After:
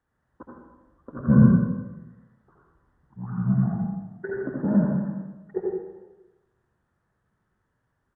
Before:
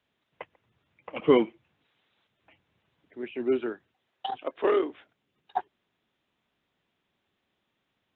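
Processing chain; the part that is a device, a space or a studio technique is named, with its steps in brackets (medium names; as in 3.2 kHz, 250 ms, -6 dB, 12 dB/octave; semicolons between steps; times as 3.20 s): monster voice (pitch shift -12 st; bass shelf 120 Hz +8 dB; delay 83 ms -7 dB; reverberation RT60 1.1 s, pre-delay 68 ms, DRR -1 dB); trim -2 dB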